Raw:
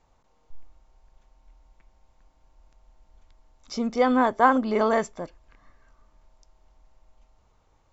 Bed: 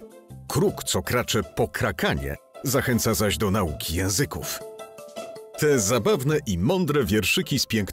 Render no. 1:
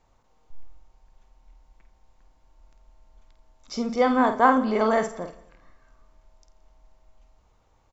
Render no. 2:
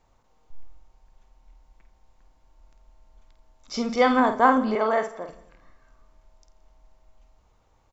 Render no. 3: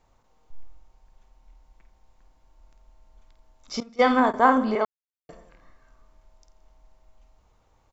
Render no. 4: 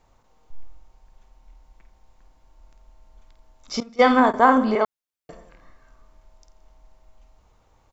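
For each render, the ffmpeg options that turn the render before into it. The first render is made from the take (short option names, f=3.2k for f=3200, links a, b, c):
-filter_complex "[0:a]asplit=2[a][b];[b]adelay=50,volume=-8dB[c];[a][c]amix=inputs=2:normalize=0,aecho=1:1:86|172|258|344|430:0.126|0.0743|0.0438|0.0259|0.0153"
-filter_complex "[0:a]asettb=1/sr,asplit=3[a][b][c];[a]atrim=end=3.744[d];[b]atrim=start=3.74:end=4.2,asetpts=PTS-STARTPTS,afade=t=in:d=0.004:c=qsin,afade=t=out:st=0.456:d=0.004:c=qsin,equalizer=f=2.9k:w=0.44:g=6.5[e];[c]atrim=start=4.196[f];[d][e]acrossfade=d=0.004:c1=hsin:c2=qsin[g];[g][f]acrossfade=d=0.004:c1=qsin:c2=hsin,asettb=1/sr,asplit=3[h][i][j];[h]atrim=end=4.754[k];[i]atrim=start=4.75:end=5.29,asetpts=PTS-STARTPTS,afade=t=in:d=0.004:c=qsin,afade=t=out:st=0.536:d=0.004:c=qsin,bass=f=250:g=-14,treble=f=4k:g=-9[l];[j]atrim=start=5.286[m];[k][l]acrossfade=d=0.004:c1=hsin:c2=qsin[n];[n][m]acrossfade=d=0.004:c1=qsin:c2=hsin"
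-filter_complex "[0:a]asettb=1/sr,asplit=3[a][b][c];[a]atrim=end=3.804[d];[b]atrim=start=3.8:end=4.34,asetpts=PTS-STARTPTS,afade=t=in:d=0.004:c=qsin,afade=t=out:st=0.536:d=0.004:c=qsin,agate=range=-20dB:threshold=-24dB:ratio=16:release=100:detection=peak[e];[c]atrim=start=4.336[f];[d][e]acrossfade=d=0.004:c1=hsin:c2=qsin[g];[g][f]acrossfade=d=0.004:c1=qsin:c2=hsin,asplit=3[h][i][j];[h]atrim=end=4.85,asetpts=PTS-STARTPTS,afade=t=out:st=4.846:d=0.004:c=hsin[k];[i]atrim=start=4.85:end=5.29,asetpts=PTS-STARTPTS,volume=0[l];[j]atrim=start=5.29,asetpts=PTS-STARTPTS,afade=t=in:d=0.004:c=hsin[m];[k][l][m]concat=n=3:v=0:a=1"
-af "volume=3.5dB,alimiter=limit=-3dB:level=0:latency=1"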